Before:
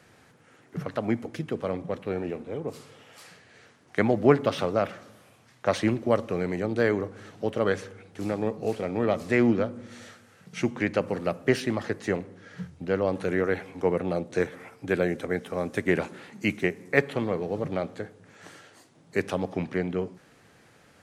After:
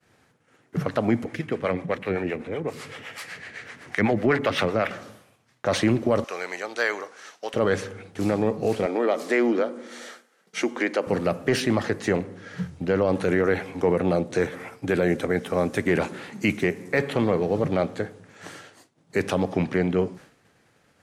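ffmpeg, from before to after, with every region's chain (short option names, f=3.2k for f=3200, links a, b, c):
-filter_complex "[0:a]asettb=1/sr,asplit=3[a][b][c];[a]atrim=end=1.244[d];[b]atrim=start=1.24:end=4.91,asetpts=PTS-STARTPTS,afade=t=in:d=0.004:c=qsin,afade=t=out:st=3.666:d=0.004:c=qsin,equalizer=f=2k:w=1.5:g=10,acompressor=mode=upward:threshold=-35dB:ratio=2.5:attack=3.2:release=140:knee=2.83:detection=peak,acrossover=split=440[e][f];[e]aeval=exprs='val(0)*(1-0.7/2+0.7/2*cos(2*PI*7.9*n/s))':c=same[g];[f]aeval=exprs='val(0)*(1-0.7/2-0.7/2*cos(2*PI*7.9*n/s))':c=same[h];[g][h]amix=inputs=2:normalize=0[i];[c]atrim=start=4.906[j];[d][i]acrossfade=d=0.004:c1=hsin:c2=qsin[k];[k][j]acrossfade=d=0.004:c1=qsin:c2=hsin,asettb=1/sr,asplit=3[l][m][n];[l]atrim=end=6.244[o];[m]atrim=start=6.24:end=7.54,asetpts=PTS-STARTPTS,afade=t=in:d=0.004:c=qsin,afade=t=out:st=1.296:d=0.004:c=qsin,highpass=890,equalizer=f=5.9k:t=o:w=0.61:g=6.5[p];[n]atrim=start=7.536[q];[o][p]acrossfade=d=0.004:c1=hsin:c2=qsin[r];[r][q]acrossfade=d=0.004:c1=qsin:c2=hsin,asettb=1/sr,asplit=3[s][t][u];[s]atrim=end=8.864[v];[t]atrim=start=8.86:end=11.07,asetpts=PTS-STARTPTS,afade=t=in:d=0.004:c=qsin,afade=t=out:st=2.206:d=0.004:c=qsin,highpass=f=280:w=0.5412,highpass=f=280:w=1.3066,bandreject=f=2.6k:w=15,acompressor=threshold=-27dB:ratio=2:attack=3.2:release=140:knee=1:detection=peak[w];[u]atrim=start=11.066[x];[v][w]acrossfade=d=0.004:c1=hsin:c2=qsin[y];[y][x]acrossfade=d=0.004:c1=qsin:c2=hsin,agate=range=-33dB:threshold=-48dB:ratio=3:detection=peak,acontrast=77,alimiter=limit=-12dB:level=0:latency=1:release=18"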